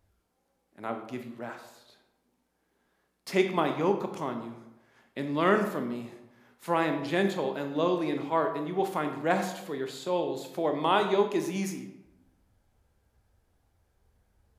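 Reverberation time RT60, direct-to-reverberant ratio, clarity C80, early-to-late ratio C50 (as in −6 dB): 0.90 s, 5.5 dB, 10.0 dB, 8.0 dB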